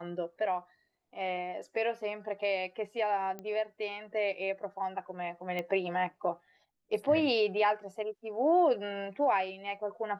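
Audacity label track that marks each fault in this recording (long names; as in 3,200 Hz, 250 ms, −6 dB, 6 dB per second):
3.390000	3.390000	click −27 dBFS
5.590000	5.590000	click −22 dBFS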